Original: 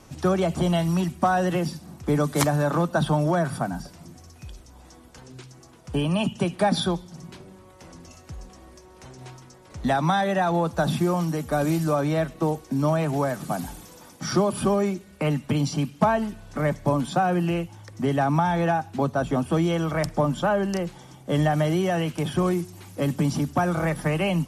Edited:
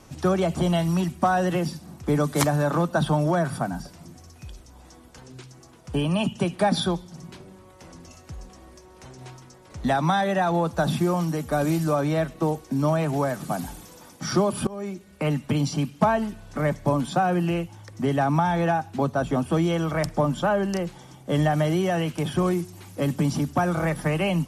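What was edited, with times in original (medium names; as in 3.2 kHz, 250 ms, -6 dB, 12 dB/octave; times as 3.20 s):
14.67–15.45 s: fade in equal-power, from -23 dB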